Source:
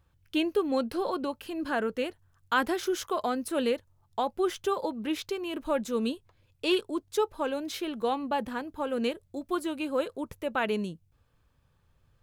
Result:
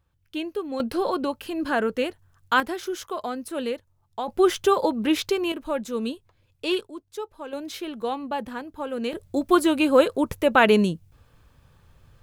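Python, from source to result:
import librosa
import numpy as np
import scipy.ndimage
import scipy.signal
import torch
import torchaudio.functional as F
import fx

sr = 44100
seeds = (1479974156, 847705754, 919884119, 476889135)

y = fx.gain(x, sr, db=fx.steps((0.0, -3.0), (0.8, 5.5), (2.6, -1.0), (4.28, 9.0), (5.52, 1.0), (6.87, -6.5), (7.53, 0.5), (9.13, 12.0)))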